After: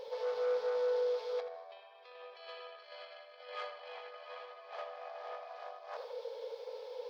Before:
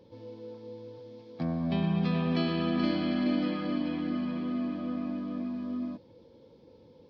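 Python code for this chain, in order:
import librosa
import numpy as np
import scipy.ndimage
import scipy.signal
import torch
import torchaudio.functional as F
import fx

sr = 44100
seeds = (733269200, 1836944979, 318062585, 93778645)

p1 = fx.over_compress(x, sr, threshold_db=-38.0, ratio=-0.5)
p2 = 10.0 ** (-35.0 / 20.0) * np.tanh(p1 / 10.0 ** (-35.0 / 20.0))
p3 = fx.brickwall_highpass(p2, sr, low_hz=420.0)
p4 = p3 + fx.echo_tape(p3, sr, ms=80, feedback_pct=51, wet_db=-7, lp_hz=2400.0, drive_db=35.0, wow_cents=12, dry=0)
y = F.gain(torch.from_numpy(p4), 6.0).numpy()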